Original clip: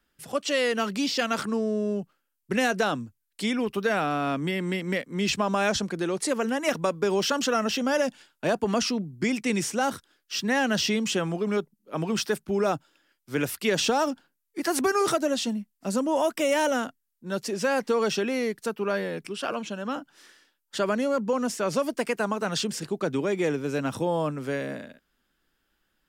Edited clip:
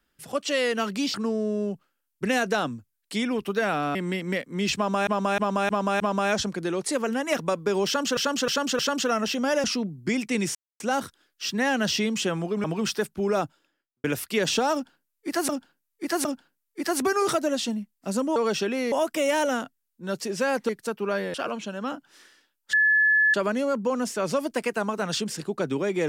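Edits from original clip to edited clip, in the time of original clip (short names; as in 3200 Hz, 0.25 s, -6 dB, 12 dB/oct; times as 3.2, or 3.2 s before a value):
1.14–1.42 cut
4.23–4.55 cut
5.36–5.67 loop, 5 plays
7.22–7.53 loop, 4 plays
8.07–8.79 cut
9.7 insert silence 0.25 s
11.54–11.95 cut
12.75–13.35 studio fade out
14.04–14.8 loop, 3 plays
17.92–18.48 move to 16.15
19.13–19.38 cut
20.77 add tone 1720 Hz -16.5 dBFS 0.61 s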